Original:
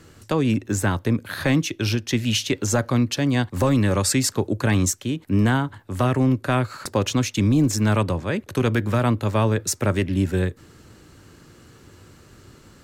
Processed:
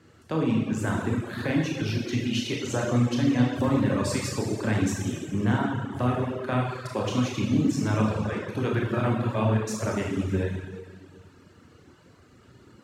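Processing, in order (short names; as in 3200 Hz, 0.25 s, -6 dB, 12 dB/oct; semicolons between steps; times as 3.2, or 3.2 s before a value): HPF 77 Hz; Schroeder reverb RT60 2 s, combs from 25 ms, DRR -4.5 dB; reverb removal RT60 0.83 s; LPF 3100 Hz 6 dB/oct; gain -7.5 dB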